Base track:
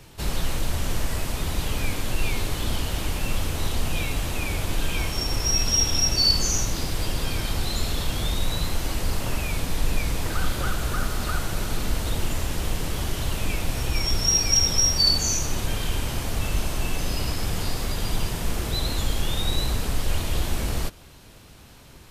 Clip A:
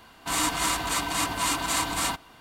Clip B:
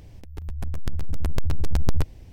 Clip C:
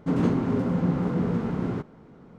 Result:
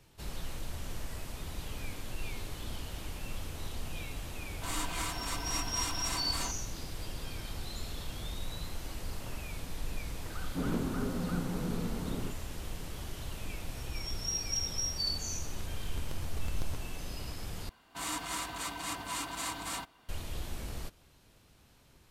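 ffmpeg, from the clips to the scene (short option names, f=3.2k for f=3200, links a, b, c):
-filter_complex "[1:a]asplit=2[a][b];[0:a]volume=-14dB,asplit=2[c][d];[c]atrim=end=17.694[e];[b]atrim=end=2.4,asetpts=PTS-STARTPTS,volume=-11dB[f];[d]atrim=start=20.086[g];[a]atrim=end=2.4,asetpts=PTS-STARTPTS,volume=-11.5dB,afade=t=in:d=0.004:c=hsin,afade=t=out:st=2.396:d=0.004:c=hsin,adelay=4360[h];[3:a]atrim=end=2.38,asetpts=PTS-STARTPTS,volume=-10.5dB,afade=t=in:d=0.004:c=hsin,afade=t=out:st=2.376:d=0.004:c=hsin,adelay=10490[i];[2:a]atrim=end=2.32,asetpts=PTS-STARTPTS,volume=-16dB,afade=t=in:d=0.004:c=hsin,afade=t=out:st=2.316:d=0.004:c=hsin,adelay=14730[j];[e][f]acrossfade=d=0.004:c1=hsin:c2=hsin[k];[k][g]acrossfade=d=0.004:c1=hsin:c2=hsin[l];[l][h][i][j]amix=inputs=4:normalize=0"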